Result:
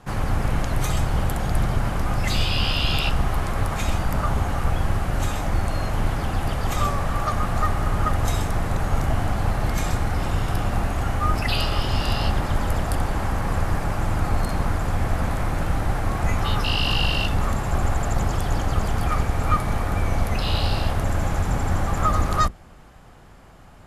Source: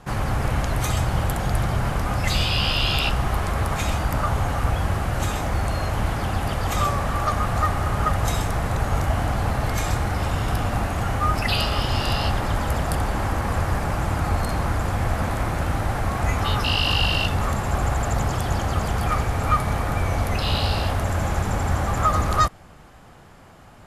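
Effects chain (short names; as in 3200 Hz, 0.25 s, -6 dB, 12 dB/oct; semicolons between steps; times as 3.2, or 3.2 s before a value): octaver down 2 oct, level +2 dB; gain -2 dB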